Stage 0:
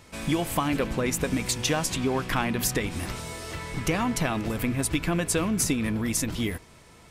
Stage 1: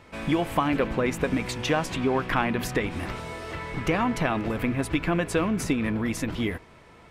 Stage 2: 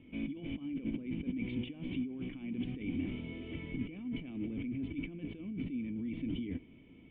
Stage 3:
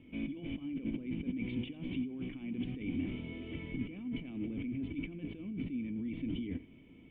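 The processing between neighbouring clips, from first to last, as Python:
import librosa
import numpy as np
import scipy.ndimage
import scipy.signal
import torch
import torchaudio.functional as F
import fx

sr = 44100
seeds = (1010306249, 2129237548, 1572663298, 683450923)

y1 = fx.bass_treble(x, sr, bass_db=-4, treble_db=-15)
y1 = F.gain(torch.from_numpy(y1), 3.0).numpy()
y2 = fx.over_compress(y1, sr, threshold_db=-32.0, ratio=-1.0)
y2 = fx.formant_cascade(y2, sr, vowel='i')
y2 = F.gain(torch.from_numpy(y2), 1.0).numpy()
y3 = y2 + 10.0 ** (-18.5 / 20.0) * np.pad(y2, (int(88 * sr / 1000.0), 0))[:len(y2)]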